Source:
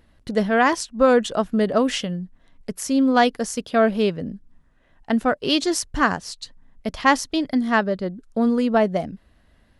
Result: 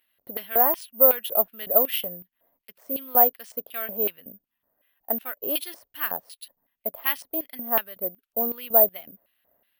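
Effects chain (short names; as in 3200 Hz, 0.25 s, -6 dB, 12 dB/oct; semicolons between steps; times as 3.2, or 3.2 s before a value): LFO band-pass square 2.7 Hz 630–2900 Hz; high shelf 6700 Hz -11 dB; careless resampling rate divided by 3×, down none, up zero stuff; gain -1 dB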